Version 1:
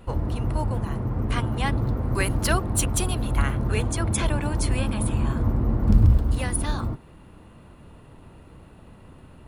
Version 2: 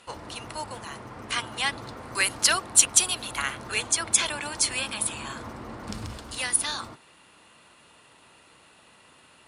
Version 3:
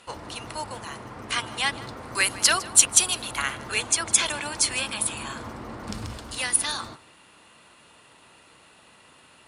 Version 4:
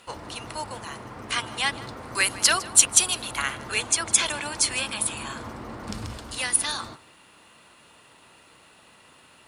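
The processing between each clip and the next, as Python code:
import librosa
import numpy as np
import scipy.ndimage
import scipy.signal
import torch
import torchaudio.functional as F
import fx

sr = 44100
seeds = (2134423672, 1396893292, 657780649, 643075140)

y1 = fx.weighting(x, sr, curve='ITU-R 468')
y1 = F.gain(torch.from_numpy(y1), -1.5).numpy()
y2 = y1 + 10.0 ** (-19.5 / 20.0) * np.pad(y1, (int(156 * sr / 1000.0), 0))[:len(y1)]
y2 = F.gain(torch.from_numpy(y2), 1.5).numpy()
y3 = fx.quant_dither(y2, sr, seeds[0], bits=12, dither='none')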